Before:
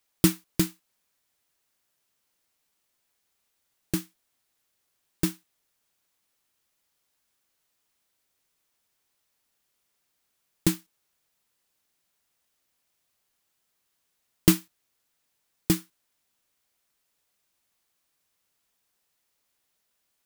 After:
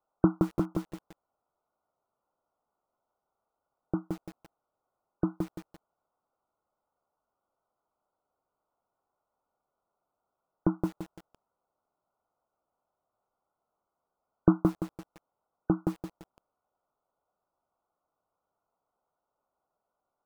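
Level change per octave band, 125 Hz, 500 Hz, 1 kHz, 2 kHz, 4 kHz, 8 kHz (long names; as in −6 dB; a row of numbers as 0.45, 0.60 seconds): −2.0 dB, +1.5 dB, +4.5 dB, −12.0 dB, below −20 dB, below −25 dB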